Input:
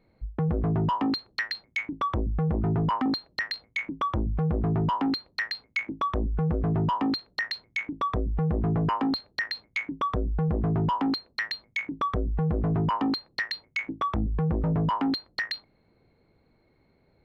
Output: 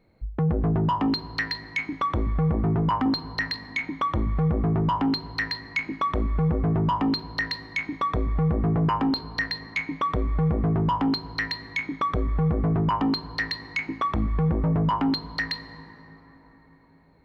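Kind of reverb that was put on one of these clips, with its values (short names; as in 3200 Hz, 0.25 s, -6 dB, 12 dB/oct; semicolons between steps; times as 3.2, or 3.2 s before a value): plate-style reverb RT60 4.4 s, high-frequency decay 0.4×, DRR 13 dB; gain +2 dB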